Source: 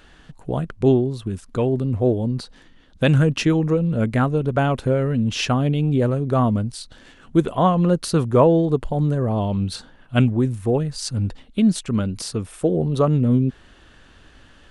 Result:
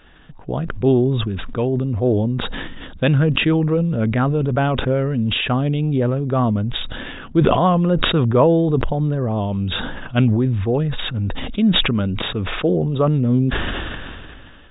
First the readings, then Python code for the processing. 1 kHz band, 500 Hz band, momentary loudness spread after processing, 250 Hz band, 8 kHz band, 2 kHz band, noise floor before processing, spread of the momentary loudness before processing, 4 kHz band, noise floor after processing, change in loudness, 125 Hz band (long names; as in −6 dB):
+1.5 dB, +1.0 dB, 10 LU, +1.0 dB, below −40 dB, +6.0 dB, −50 dBFS, 9 LU, +8.5 dB, −40 dBFS, +1.5 dB, +1.5 dB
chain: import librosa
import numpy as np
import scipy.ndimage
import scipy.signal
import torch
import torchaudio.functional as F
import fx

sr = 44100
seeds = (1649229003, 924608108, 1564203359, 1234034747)

y = fx.brickwall_lowpass(x, sr, high_hz=3800.0)
y = fx.sustainer(y, sr, db_per_s=24.0)